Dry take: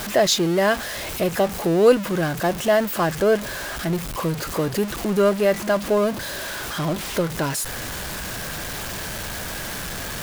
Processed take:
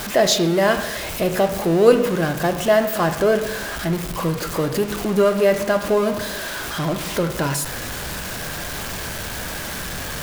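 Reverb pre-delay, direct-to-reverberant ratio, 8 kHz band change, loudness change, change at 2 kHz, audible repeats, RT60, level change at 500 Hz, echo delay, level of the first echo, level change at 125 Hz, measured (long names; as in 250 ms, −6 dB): 12 ms, 7.0 dB, +1.0 dB, +2.0 dB, +1.5 dB, no echo audible, 0.90 s, +2.0 dB, no echo audible, no echo audible, +2.0 dB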